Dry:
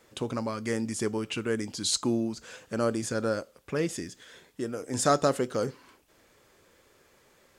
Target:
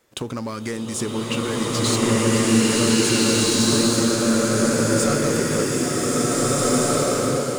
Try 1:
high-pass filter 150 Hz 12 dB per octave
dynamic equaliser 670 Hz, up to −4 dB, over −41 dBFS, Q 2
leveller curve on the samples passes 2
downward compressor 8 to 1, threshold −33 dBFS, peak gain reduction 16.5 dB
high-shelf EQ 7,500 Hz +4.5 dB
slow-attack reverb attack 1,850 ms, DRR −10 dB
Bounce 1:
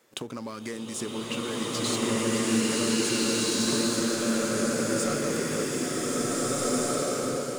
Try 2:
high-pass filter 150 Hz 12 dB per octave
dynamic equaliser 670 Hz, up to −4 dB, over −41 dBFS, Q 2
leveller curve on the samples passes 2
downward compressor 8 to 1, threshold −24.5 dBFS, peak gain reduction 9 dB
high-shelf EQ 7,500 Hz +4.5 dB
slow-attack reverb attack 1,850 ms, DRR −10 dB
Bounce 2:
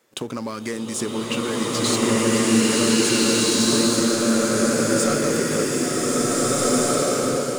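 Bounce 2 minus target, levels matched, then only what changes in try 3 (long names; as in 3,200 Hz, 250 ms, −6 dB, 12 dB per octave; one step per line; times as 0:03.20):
125 Hz band −5.0 dB
remove: high-pass filter 150 Hz 12 dB per octave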